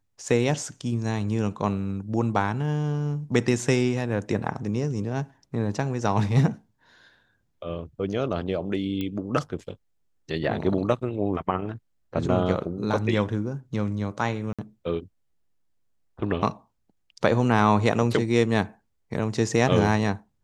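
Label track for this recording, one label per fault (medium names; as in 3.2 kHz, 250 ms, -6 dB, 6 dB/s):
9.010000	9.010000	pop -18 dBFS
14.530000	14.590000	dropout 56 ms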